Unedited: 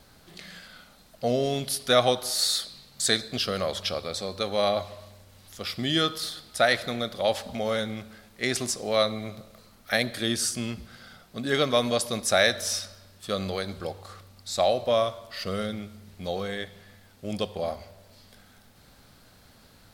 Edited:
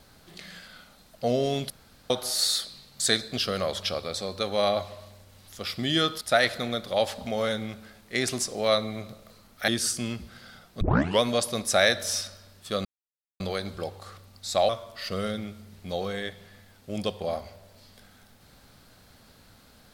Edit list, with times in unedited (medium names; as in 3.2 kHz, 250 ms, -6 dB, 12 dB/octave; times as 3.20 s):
1.70–2.10 s: room tone
6.21–6.49 s: delete
9.96–10.26 s: delete
11.39 s: tape start 0.40 s
13.43 s: insert silence 0.55 s
14.72–15.04 s: delete